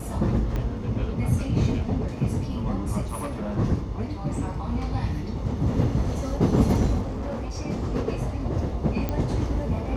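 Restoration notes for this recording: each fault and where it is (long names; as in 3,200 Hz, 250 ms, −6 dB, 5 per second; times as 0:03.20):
0:00.56: click −17 dBFS
0:03.01–0:03.59: clipping −25.5 dBFS
0:07.01–0:07.51: clipping −26.5 dBFS
0:09.09: click −14 dBFS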